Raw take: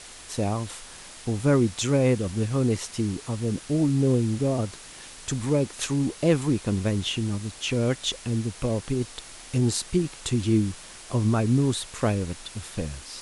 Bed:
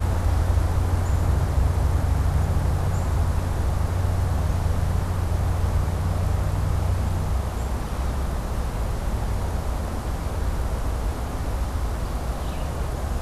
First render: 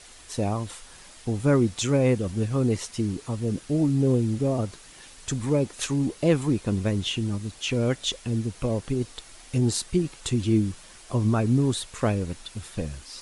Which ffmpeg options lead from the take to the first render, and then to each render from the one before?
-af "afftdn=nr=6:nf=-44"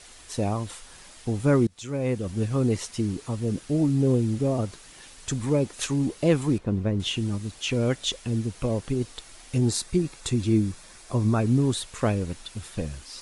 -filter_complex "[0:a]asettb=1/sr,asplit=3[a][b][c];[a]atrim=end=6.584[d];[b]atrim=start=6.58:end=7,asetpts=PTS-STARTPTS,afade=t=in:d=0.004:c=qsin,afade=t=out:st=0.416:d=0.004:c=qsin,lowpass=f=1.1k:p=1[e];[c]atrim=start=6.996[f];[d][e]acrossfade=d=0.004:c1=hsin:c2=qsin[g];[g][f]acrossfade=d=0.004:c1=qsin:c2=hsin,asettb=1/sr,asplit=3[h][i][j];[h]atrim=end=9.684[k];[i]atrim=start=9.68:end=11.4,asetpts=PTS-STARTPTS,afade=t=in:d=0.004:c=qsin,afade=t=out:st=1.716:d=0.004:c=qsin,bandreject=f=3k:w=8.1[l];[j]atrim=start=11.396[m];[k][l]acrossfade=d=0.004:c1=hsin:c2=qsin[n];[n][m]acrossfade=d=0.004:c1=qsin:c2=hsin,asplit=2[o][p];[o]atrim=end=1.67,asetpts=PTS-STARTPTS,afade=t=out:st=1.666:d=0.004:c=hsin:silence=0.0668344[q];[p]atrim=start=1.67,asetpts=PTS-STARTPTS,afade=t=in:d=0.77:silence=0.0668344[r];[q][r]concat=n=2:v=0:a=1"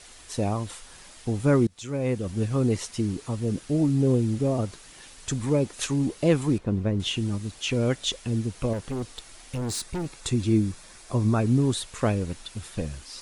-filter_complex "[0:a]asettb=1/sr,asplit=3[a][b][c];[a]atrim=end=8.734[d];[b]atrim=start=8.73:end=10.15,asetpts=PTS-STARTPTS,afade=t=in:d=0.004:c=qsin,afade=t=out:st=1.416:d=0.004:c=qsin,asoftclip=type=hard:threshold=-27dB[e];[c]atrim=start=10.146[f];[d][e]acrossfade=d=0.004:c1=hsin:c2=qsin[g];[g][f]acrossfade=d=0.004:c1=qsin:c2=hsin"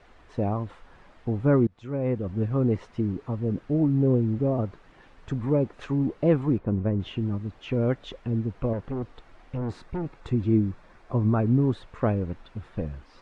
-af "lowpass=1.5k"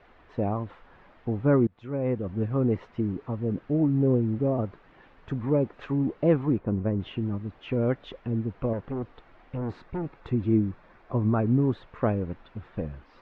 -af "lowpass=3.2k,lowshelf=f=90:g=-6"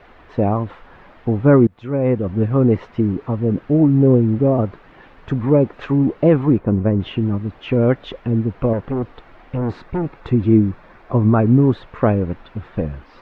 -af "volume=10dB,alimiter=limit=-3dB:level=0:latency=1"

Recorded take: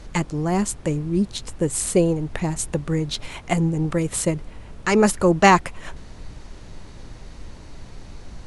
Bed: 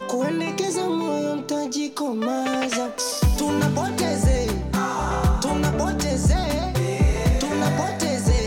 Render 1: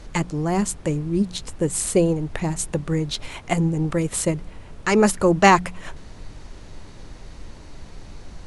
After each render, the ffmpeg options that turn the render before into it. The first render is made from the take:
-af "bandreject=f=60:t=h:w=4,bandreject=f=120:t=h:w=4,bandreject=f=180:t=h:w=4,bandreject=f=240:t=h:w=4"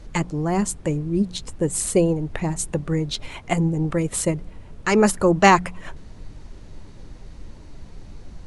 -af "afftdn=nr=6:nf=-42"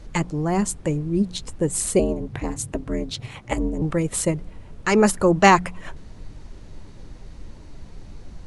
-filter_complex "[0:a]asettb=1/sr,asplit=3[a][b][c];[a]atrim=end=1.994[d];[b]atrim=start=1.99:end=3.82,asetpts=PTS-STARTPTS,afade=t=in:d=0.004:c=qsin,afade=t=out:st=1.826:d=0.004:c=qsin,aeval=exprs='val(0)*sin(2*PI*120*n/s)':c=same[e];[c]atrim=start=3.816[f];[d][e]acrossfade=d=0.004:c1=hsin:c2=qsin[g];[g][f]acrossfade=d=0.004:c1=qsin:c2=hsin"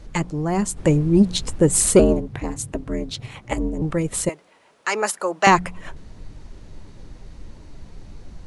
-filter_complex "[0:a]asplit=3[a][b][c];[a]afade=t=out:st=0.76:d=0.02[d];[b]acontrast=85,afade=t=in:st=0.76:d=0.02,afade=t=out:st=2.19:d=0.02[e];[c]afade=t=in:st=2.19:d=0.02[f];[d][e][f]amix=inputs=3:normalize=0,asettb=1/sr,asplit=3[g][h][i];[g]atrim=end=4.294[j];[h]atrim=start=4.29:end=5.47,asetpts=PTS-STARTPTS,afade=t=in:d=0.004:c=qsin,afade=t=out:st=1.176:d=0.004:c=qsin,highpass=630[k];[i]atrim=start=5.466[l];[j][k]acrossfade=d=0.004:c1=hsin:c2=qsin[m];[m][l]acrossfade=d=0.004:c1=qsin:c2=hsin"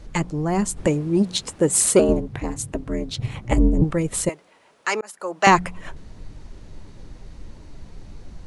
-filter_complex "[0:a]asettb=1/sr,asplit=3[a][b][c];[a]atrim=end=0.874[d];[b]atrim=start=0.87:end=2.09,asetpts=PTS-STARTPTS,afade=t=in:d=0.004:c=qsin,afade=t=out:st=1.216:d=0.004:c=qsin,highpass=f=300:p=1[e];[c]atrim=start=2.086[f];[d][e]acrossfade=d=0.004:c1=hsin:c2=qsin[g];[g][f]acrossfade=d=0.004:c1=qsin:c2=hsin,asettb=1/sr,asplit=3[h][i][j];[h]atrim=end=3.184[k];[i]atrim=start=3.18:end=3.84,asetpts=PTS-STARTPTS,afade=t=in:d=0.004:c=qsin,afade=t=out:st=0.656:d=0.004:c=qsin,lowshelf=f=320:g=10.5[l];[j]atrim=start=3.836[m];[k][l]acrossfade=d=0.004:c1=hsin:c2=qsin[n];[n][m]acrossfade=d=0.004:c1=qsin:c2=hsin,asplit=2[o][p];[o]atrim=end=5.01,asetpts=PTS-STARTPTS,afade=t=out:st=5.006:d=0.004:c=hsin[q];[p]atrim=start=5.01,asetpts=PTS-STARTPTS,afade=t=in:d=0.46[r];[q][r]concat=n=2:v=0:a=1"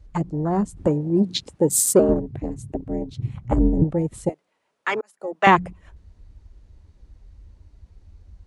-af "afwtdn=0.0501,highpass=45"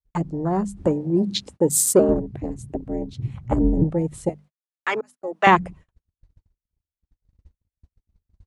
-af "bandreject=f=50:t=h:w=6,bandreject=f=100:t=h:w=6,bandreject=f=150:t=h:w=6,bandreject=f=200:t=h:w=6,bandreject=f=250:t=h:w=6,agate=range=-46dB:threshold=-42dB:ratio=16:detection=peak"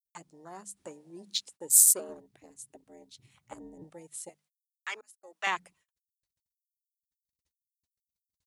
-af "aderivative"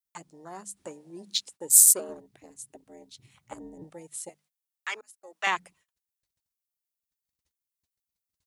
-af "volume=3.5dB,alimiter=limit=-1dB:level=0:latency=1"

